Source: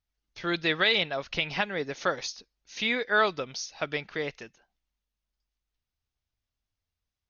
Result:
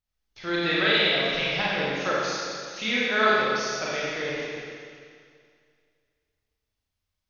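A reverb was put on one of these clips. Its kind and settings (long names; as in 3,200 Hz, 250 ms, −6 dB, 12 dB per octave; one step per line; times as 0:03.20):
four-comb reverb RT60 2.2 s, combs from 29 ms, DRR −7.5 dB
level −4 dB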